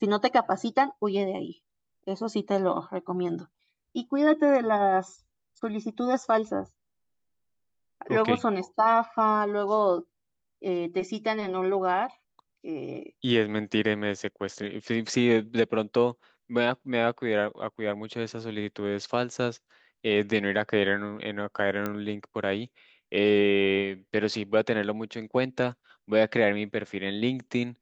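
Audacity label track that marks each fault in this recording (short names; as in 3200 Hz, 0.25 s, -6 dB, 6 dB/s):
21.860000	21.860000	pop -16 dBFS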